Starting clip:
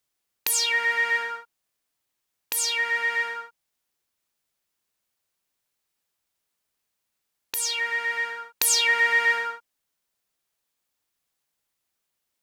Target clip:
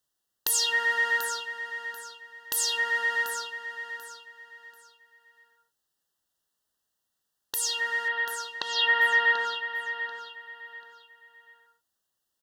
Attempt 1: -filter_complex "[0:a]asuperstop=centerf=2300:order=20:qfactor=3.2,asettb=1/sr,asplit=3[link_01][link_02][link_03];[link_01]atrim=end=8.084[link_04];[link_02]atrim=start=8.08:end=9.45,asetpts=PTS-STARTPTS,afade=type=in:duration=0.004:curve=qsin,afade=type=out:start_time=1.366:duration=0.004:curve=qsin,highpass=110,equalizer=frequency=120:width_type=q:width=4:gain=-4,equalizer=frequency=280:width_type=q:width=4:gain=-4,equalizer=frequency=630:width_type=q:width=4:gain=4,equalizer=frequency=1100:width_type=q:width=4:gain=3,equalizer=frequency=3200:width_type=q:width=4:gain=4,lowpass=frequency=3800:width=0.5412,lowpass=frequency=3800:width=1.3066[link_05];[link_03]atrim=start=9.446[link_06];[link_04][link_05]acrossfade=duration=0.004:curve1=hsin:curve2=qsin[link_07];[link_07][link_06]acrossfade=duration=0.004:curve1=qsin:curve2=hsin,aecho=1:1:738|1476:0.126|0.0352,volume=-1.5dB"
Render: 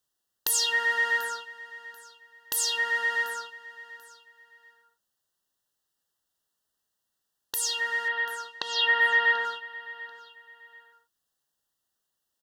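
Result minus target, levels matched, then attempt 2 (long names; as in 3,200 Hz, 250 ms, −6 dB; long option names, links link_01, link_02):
echo-to-direct −7.5 dB
-filter_complex "[0:a]asuperstop=centerf=2300:order=20:qfactor=3.2,asettb=1/sr,asplit=3[link_01][link_02][link_03];[link_01]atrim=end=8.084[link_04];[link_02]atrim=start=8.08:end=9.45,asetpts=PTS-STARTPTS,afade=type=in:duration=0.004:curve=qsin,afade=type=out:start_time=1.366:duration=0.004:curve=qsin,highpass=110,equalizer=frequency=120:width_type=q:width=4:gain=-4,equalizer=frequency=280:width_type=q:width=4:gain=-4,equalizer=frequency=630:width_type=q:width=4:gain=4,equalizer=frequency=1100:width_type=q:width=4:gain=3,equalizer=frequency=3200:width_type=q:width=4:gain=4,lowpass=frequency=3800:width=0.5412,lowpass=frequency=3800:width=1.3066[link_05];[link_03]atrim=start=9.446[link_06];[link_04][link_05]acrossfade=duration=0.004:curve1=hsin:curve2=qsin[link_07];[link_07][link_06]acrossfade=duration=0.004:curve1=qsin:curve2=hsin,aecho=1:1:738|1476|2214:0.299|0.0836|0.0234,volume=-1.5dB"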